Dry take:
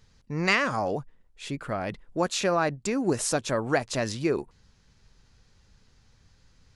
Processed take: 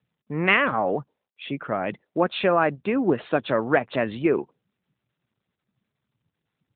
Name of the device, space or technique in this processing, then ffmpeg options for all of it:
mobile call with aggressive noise cancelling: -af "highpass=170,afftdn=nr=26:nf=-52,volume=1.78" -ar 8000 -c:a libopencore_amrnb -b:a 12200

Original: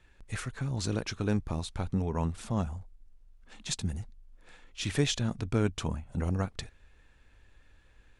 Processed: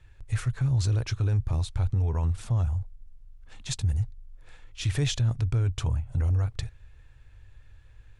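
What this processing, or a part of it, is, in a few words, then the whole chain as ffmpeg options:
car stereo with a boomy subwoofer: -af "lowshelf=f=150:t=q:w=3:g=8,alimiter=limit=0.119:level=0:latency=1:release=17"

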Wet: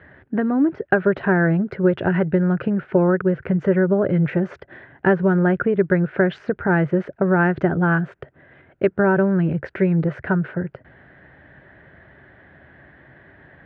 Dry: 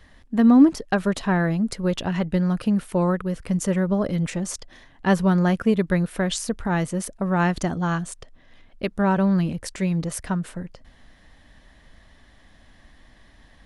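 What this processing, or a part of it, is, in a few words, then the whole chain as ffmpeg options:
bass amplifier: -af "acompressor=threshold=0.0708:ratio=4,highpass=f=79:w=0.5412,highpass=f=79:w=1.3066,equalizer=f=140:t=q:w=4:g=7,equalizer=f=230:t=q:w=4:g=-6,equalizer=f=380:t=q:w=4:g=9,equalizer=f=590:t=q:w=4:g=3,equalizer=f=1100:t=q:w=4:g=-6,equalizer=f=1500:t=q:w=4:g=9,lowpass=f=2200:w=0.5412,lowpass=f=2200:w=1.3066,volume=2.11"

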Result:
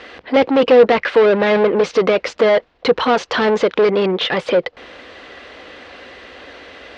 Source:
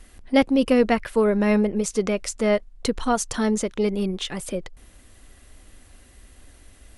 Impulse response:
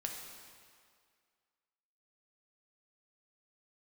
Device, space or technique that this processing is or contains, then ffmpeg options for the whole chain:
overdrive pedal into a guitar cabinet: -filter_complex "[0:a]asplit=2[s0][s1];[s1]highpass=f=720:p=1,volume=31.6,asoftclip=type=tanh:threshold=0.473[s2];[s0][s2]amix=inputs=2:normalize=0,lowpass=f=3100:p=1,volume=0.501,highpass=81,equalizer=f=110:t=q:w=4:g=-10,equalizer=f=210:t=q:w=4:g=-5,equalizer=f=490:t=q:w=4:g=8,lowpass=f=4400:w=0.5412,lowpass=f=4400:w=1.3066,volume=0.891"

